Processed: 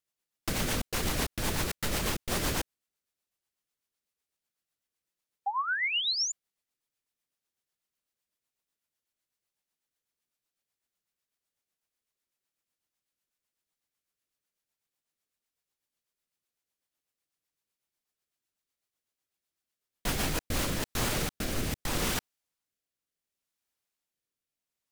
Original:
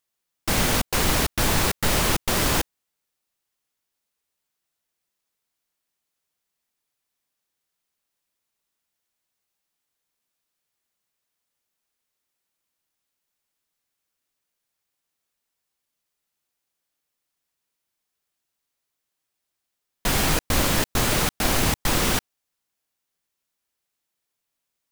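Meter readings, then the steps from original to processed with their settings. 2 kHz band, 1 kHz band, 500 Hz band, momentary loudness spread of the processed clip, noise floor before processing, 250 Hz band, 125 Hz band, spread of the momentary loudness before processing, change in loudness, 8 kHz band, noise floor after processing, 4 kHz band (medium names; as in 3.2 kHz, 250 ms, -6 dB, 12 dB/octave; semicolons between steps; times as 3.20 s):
-6.5 dB, -8.0 dB, -9.0 dB, 8 LU, -82 dBFS, -8.5 dB, -8.5 dB, 4 LU, -9.0 dB, -8.5 dB, under -85 dBFS, -6.0 dB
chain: peak limiter -14 dBFS, peak gain reduction 6 dB; painted sound rise, 5.46–6.32 s, 770–7100 Hz -23 dBFS; rotary cabinet horn 8 Hz, later 0.7 Hz, at 20.07 s; trim -4 dB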